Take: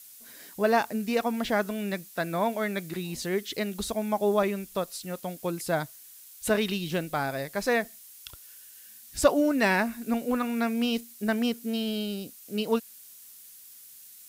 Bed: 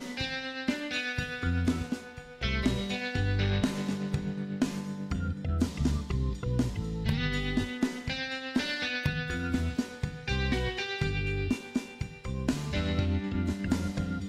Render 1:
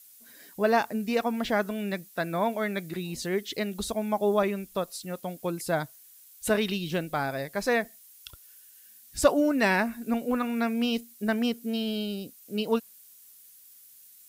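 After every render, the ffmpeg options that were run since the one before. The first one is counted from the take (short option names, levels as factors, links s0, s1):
-af "afftdn=nr=6:nf=-50"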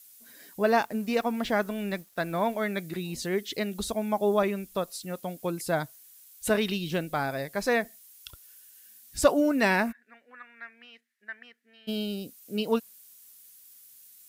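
-filter_complex "[0:a]asettb=1/sr,asplit=3[s0][s1][s2];[s0]atrim=end=0.804[s3];[s1]atrim=start=0.8:end=2.56,asetpts=PTS-STARTPTS,afade=t=in:d=0.004:c=qsin,afade=t=out:st=1.756:d=0.004:c=qsin,aeval=exprs='sgn(val(0))*max(abs(val(0))-0.00188,0)':c=same[s4];[s2]atrim=start=2.556[s5];[s3][s4]acrossfade=d=0.004:c1=hsin:c2=qsin[s6];[s6][s5]acrossfade=d=0.004:c1=qsin:c2=hsin,asplit=3[s7][s8][s9];[s7]afade=t=out:st=9.91:d=0.02[s10];[s8]bandpass=f=1800:t=q:w=7.6,afade=t=in:st=9.91:d=0.02,afade=t=out:st=11.87:d=0.02[s11];[s9]afade=t=in:st=11.87:d=0.02[s12];[s10][s11][s12]amix=inputs=3:normalize=0"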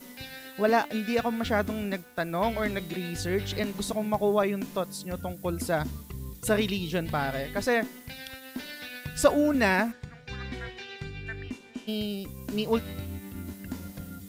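-filter_complex "[1:a]volume=0.376[s0];[0:a][s0]amix=inputs=2:normalize=0"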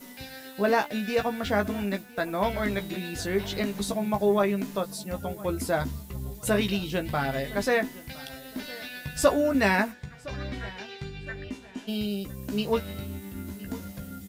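-filter_complex "[0:a]asplit=2[s0][s1];[s1]adelay=15,volume=0.473[s2];[s0][s2]amix=inputs=2:normalize=0,asplit=2[s3][s4];[s4]adelay=1012,lowpass=f=4600:p=1,volume=0.1,asplit=2[s5][s6];[s6]adelay=1012,lowpass=f=4600:p=1,volume=0.34,asplit=2[s7][s8];[s8]adelay=1012,lowpass=f=4600:p=1,volume=0.34[s9];[s3][s5][s7][s9]amix=inputs=4:normalize=0"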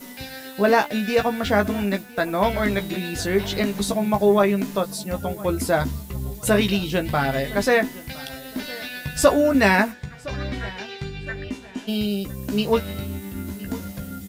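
-af "volume=2,alimiter=limit=0.708:level=0:latency=1"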